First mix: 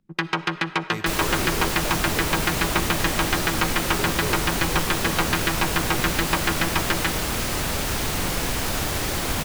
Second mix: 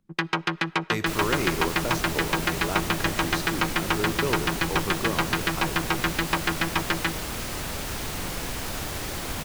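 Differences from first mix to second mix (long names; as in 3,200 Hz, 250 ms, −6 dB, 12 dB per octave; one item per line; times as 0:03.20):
speech +4.0 dB
first sound: send −11.5 dB
second sound −6.5 dB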